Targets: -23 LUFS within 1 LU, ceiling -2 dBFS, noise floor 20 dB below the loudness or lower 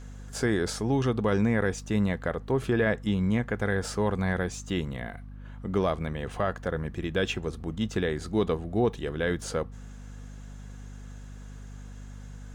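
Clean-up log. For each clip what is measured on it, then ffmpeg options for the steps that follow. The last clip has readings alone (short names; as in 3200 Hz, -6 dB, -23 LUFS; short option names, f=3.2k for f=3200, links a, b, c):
hum 50 Hz; harmonics up to 250 Hz; hum level -40 dBFS; loudness -29.0 LUFS; peak -14.5 dBFS; loudness target -23.0 LUFS
-> -af "bandreject=f=50:t=h:w=4,bandreject=f=100:t=h:w=4,bandreject=f=150:t=h:w=4,bandreject=f=200:t=h:w=4,bandreject=f=250:t=h:w=4"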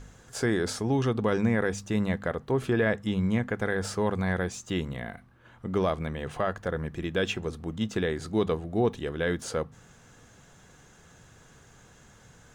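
hum none; loudness -29.0 LUFS; peak -14.0 dBFS; loudness target -23.0 LUFS
-> -af "volume=6dB"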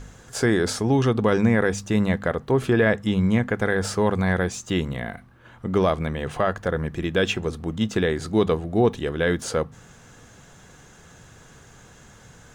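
loudness -23.0 LUFS; peak -8.0 dBFS; noise floor -50 dBFS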